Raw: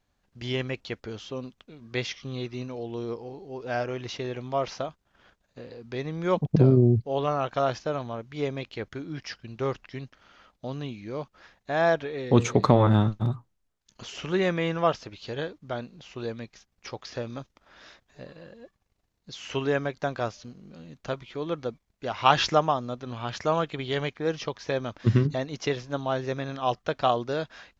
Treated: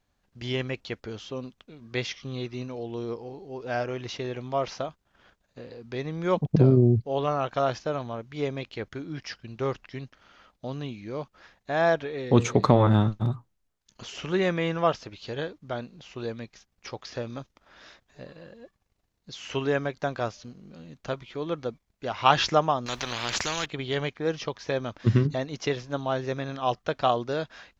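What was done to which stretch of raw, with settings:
0:22.86–0:23.66: every bin compressed towards the loudest bin 4 to 1

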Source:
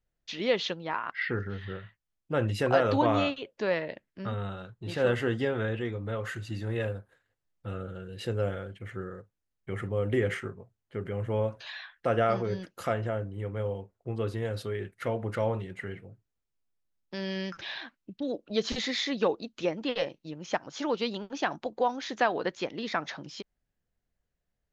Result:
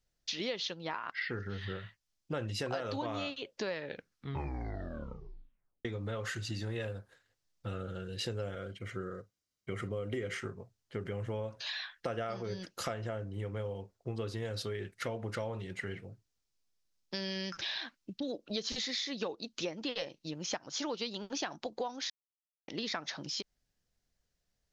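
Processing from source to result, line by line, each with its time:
0:03.70: tape stop 2.15 s
0:08.55–0:10.34: notch comb filter 860 Hz
0:22.10–0:22.68: silence
whole clip: parametric band 5,300 Hz +11 dB 1.3 octaves; downward compressor 6 to 1, threshold −34 dBFS

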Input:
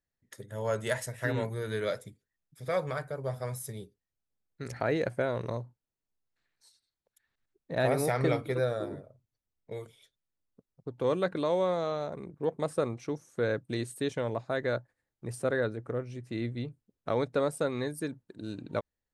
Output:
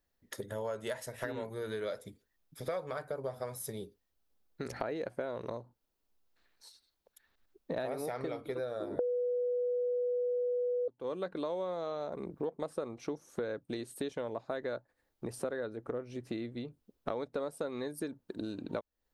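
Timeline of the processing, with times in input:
0:08.99–0:10.88: beep over 491 Hz −9.5 dBFS
whole clip: downward compressor 12 to 1, threshold −42 dBFS; graphic EQ with 10 bands 125 Hz −11 dB, 2,000 Hz −5 dB, 8,000 Hz −7 dB; level +10 dB

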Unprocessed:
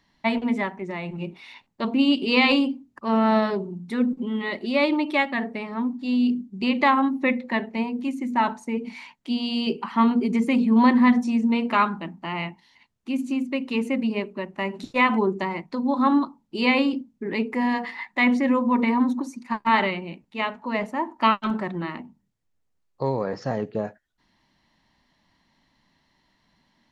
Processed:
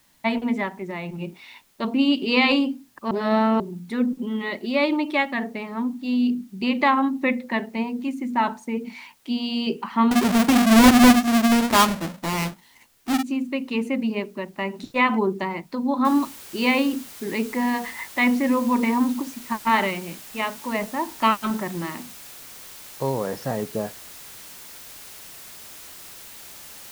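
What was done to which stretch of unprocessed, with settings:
0:03.11–0:03.60: reverse
0:10.11–0:13.23: each half-wave held at its own peak
0:16.05: noise floor change −62 dB −42 dB

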